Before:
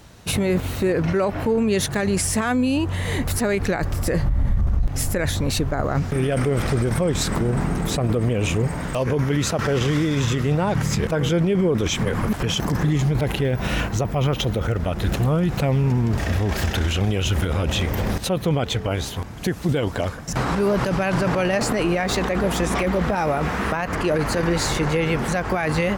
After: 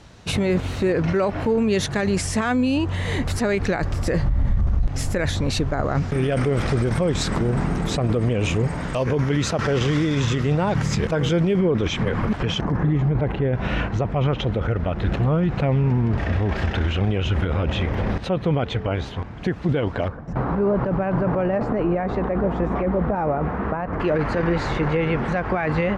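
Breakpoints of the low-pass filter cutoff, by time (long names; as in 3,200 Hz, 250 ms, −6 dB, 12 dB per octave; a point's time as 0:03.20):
6,500 Hz
from 0:11.59 3,600 Hz
from 0:12.61 1,600 Hz
from 0:13.53 2,700 Hz
from 0:20.08 1,100 Hz
from 0:24.00 2,400 Hz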